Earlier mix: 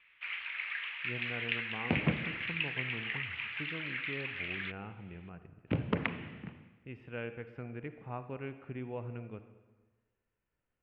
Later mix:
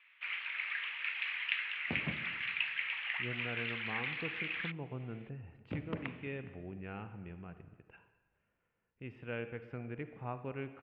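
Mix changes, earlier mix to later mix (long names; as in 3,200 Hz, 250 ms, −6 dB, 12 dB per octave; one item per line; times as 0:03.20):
speech: entry +2.15 s
second sound −9.0 dB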